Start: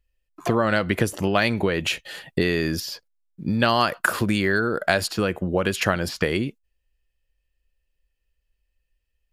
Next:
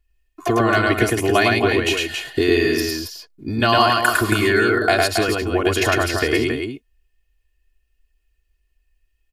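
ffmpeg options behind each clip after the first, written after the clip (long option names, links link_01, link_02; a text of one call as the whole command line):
ffmpeg -i in.wav -filter_complex "[0:a]aecho=1:1:2.8:0.94,asplit=2[link_01][link_02];[link_02]aecho=0:1:105|274.1:0.794|0.501[link_03];[link_01][link_03]amix=inputs=2:normalize=0" out.wav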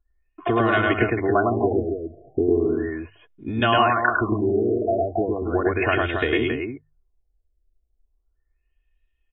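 ffmpeg -i in.wav -af "bandreject=frequency=50:width_type=h:width=6,bandreject=frequency=100:width_type=h:width=6,bandreject=frequency=150:width_type=h:width=6,afftfilt=real='re*lt(b*sr/1024,700*pow(3900/700,0.5+0.5*sin(2*PI*0.36*pts/sr)))':imag='im*lt(b*sr/1024,700*pow(3900/700,0.5+0.5*sin(2*PI*0.36*pts/sr)))':win_size=1024:overlap=0.75,volume=-2.5dB" out.wav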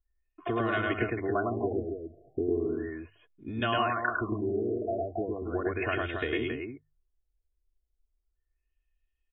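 ffmpeg -i in.wav -af "equalizer=frequency=860:width_type=o:width=0.26:gain=-6.5,volume=-9dB" out.wav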